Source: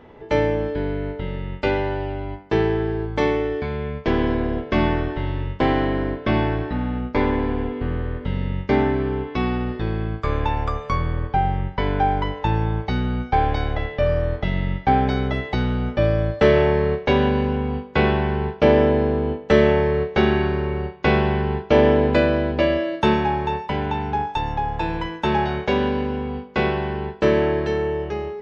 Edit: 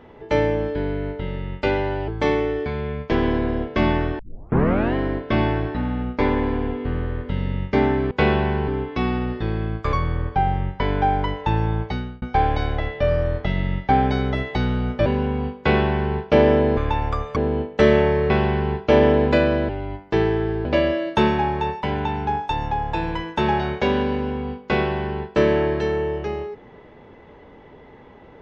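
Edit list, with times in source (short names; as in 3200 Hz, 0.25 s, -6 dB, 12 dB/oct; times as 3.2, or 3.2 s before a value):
2.08–3.04 move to 22.51
5.15 tape start 0.76 s
10.32–10.91 move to 19.07
12.8–13.2 fade out
16.04–17.36 cut
17.88–18.45 copy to 9.07
20.01–21.12 cut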